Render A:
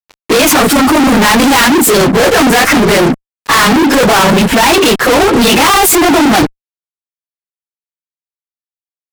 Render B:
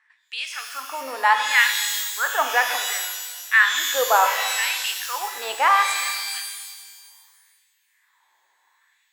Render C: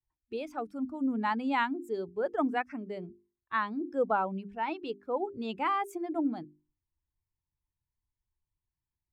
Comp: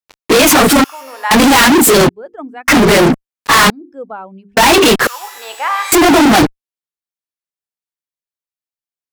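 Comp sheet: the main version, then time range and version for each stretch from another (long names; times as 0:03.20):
A
0:00.84–0:01.31: punch in from B
0:02.09–0:02.68: punch in from C
0:03.70–0:04.57: punch in from C
0:05.07–0:05.92: punch in from B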